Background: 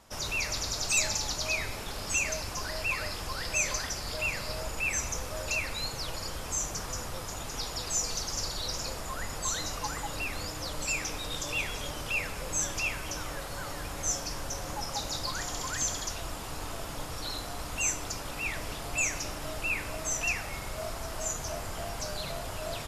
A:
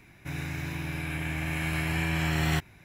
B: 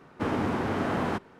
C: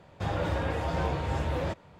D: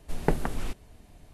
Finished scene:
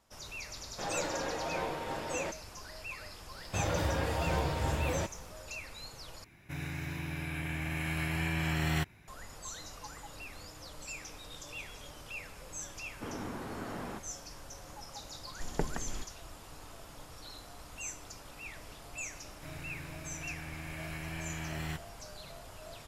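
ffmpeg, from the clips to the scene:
-filter_complex "[3:a]asplit=2[s0][s1];[1:a]asplit=2[s2][s3];[0:a]volume=0.251[s4];[s0]highpass=260[s5];[s1]aemphasis=mode=production:type=50fm[s6];[s4]asplit=2[s7][s8];[s7]atrim=end=6.244[s9];[s2]atrim=end=2.84,asetpts=PTS-STARTPTS,volume=0.596[s10];[s8]atrim=start=9.076[s11];[s5]atrim=end=1.99,asetpts=PTS-STARTPTS,volume=0.668,afade=t=in:d=0.004:c=hsin,afade=t=out:st=1.986:d=0.004:c=hsin,adelay=580[s12];[s6]atrim=end=1.99,asetpts=PTS-STARTPTS,volume=0.794,afade=t=in:d=0.004:c=hsin,afade=t=out:st=1.986:d=0.004:c=hsin,adelay=146853S[s13];[2:a]atrim=end=1.39,asetpts=PTS-STARTPTS,volume=0.224,afade=t=in:d=0.004:c=hsin,afade=t=out:st=1.386:d=0.004:c=hsin,adelay=12810[s14];[4:a]atrim=end=1.33,asetpts=PTS-STARTPTS,volume=0.376,afade=t=in:d=0.004:c=hsin,afade=t=out:st=1.326:d=0.004:c=hsin,adelay=15310[s15];[s3]atrim=end=2.84,asetpts=PTS-STARTPTS,volume=0.251,afade=t=in:d=0.004:c=hsin,afade=t=out:st=2.836:d=0.004:c=hsin,adelay=19170[s16];[s9][s10]acrossfade=d=0.004:c1=hsin:c2=hsin[s17];[s17][s11]acrossfade=d=0.004:c1=hsin:c2=hsin[s18];[s18][s12][s13][s14][s15][s16]amix=inputs=6:normalize=0"

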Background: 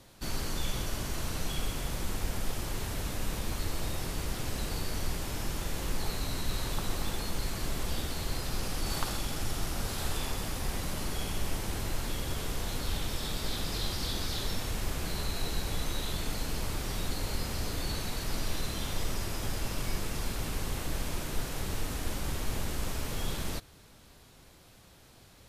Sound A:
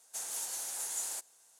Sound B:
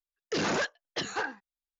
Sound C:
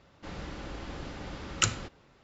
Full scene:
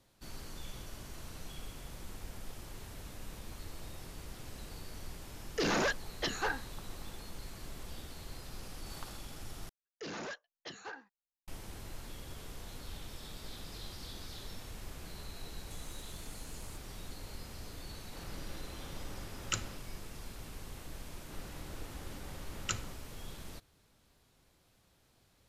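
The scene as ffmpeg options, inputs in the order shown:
-filter_complex "[2:a]asplit=2[s0][s1];[3:a]asplit=2[s2][s3];[0:a]volume=0.237[s4];[1:a]acompressor=threshold=0.00316:ratio=6:attack=3.2:release=140:knee=1:detection=peak[s5];[s4]asplit=2[s6][s7];[s6]atrim=end=9.694[s8];[s1]atrim=end=1.79,asetpts=PTS-STARTPTS,volume=0.211[s9];[s7]atrim=start=11.476[s10];[s0]atrim=end=1.79,asetpts=PTS-STARTPTS,volume=0.794,afade=t=in:d=0.004:c=hsin,afade=t=out:st=1.786:d=0.004:c=hsin,adelay=5260[s11];[s5]atrim=end=1.59,asetpts=PTS-STARTPTS,volume=0.668,afade=t=in:d=0.004:c=hsin,afade=t=out:st=1.586:d=0.004:c=hsin,adelay=15570[s12];[s2]atrim=end=2.23,asetpts=PTS-STARTPTS,volume=0.355,afade=t=in:d=0.004:c=hsin,afade=t=out:st=2.226:d=0.004:c=hsin,adelay=17900[s13];[s3]atrim=end=2.23,asetpts=PTS-STARTPTS,volume=0.316,afade=t=in:d=0.004:c=hsin,afade=t=out:st=2.226:d=0.004:c=hsin,adelay=21070[s14];[s8][s9]acrossfade=d=0.004:c1=hsin:c2=hsin[s15];[s15][s10]acrossfade=d=0.004:c1=hsin:c2=hsin[s16];[s16][s11][s12][s13][s14]amix=inputs=5:normalize=0"

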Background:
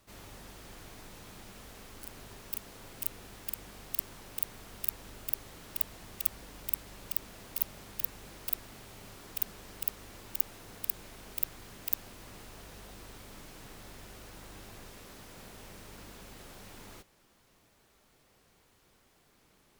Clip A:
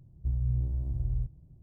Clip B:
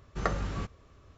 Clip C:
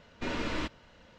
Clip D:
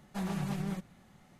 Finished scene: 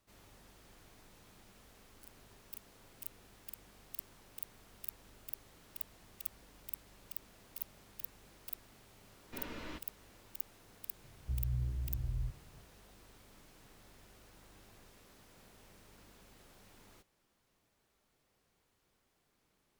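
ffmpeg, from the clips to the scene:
-filter_complex "[0:a]volume=0.282[s0];[3:a]atrim=end=1.18,asetpts=PTS-STARTPTS,volume=0.237,afade=t=in:d=0.004:c=hsin,afade=t=out:st=1.176:d=0.004:c=hsin,adelay=9110[s1];[1:a]atrim=end=1.62,asetpts=PTS-STARTPTS,volume=0.447,afade=t=in:d=0.004:c=hsin,afade=t=out:st=1.616:d=0.004:c=hsin,adelay=11040[s2];[s0][s1][s2]amix=inputs=3:normalize=0"

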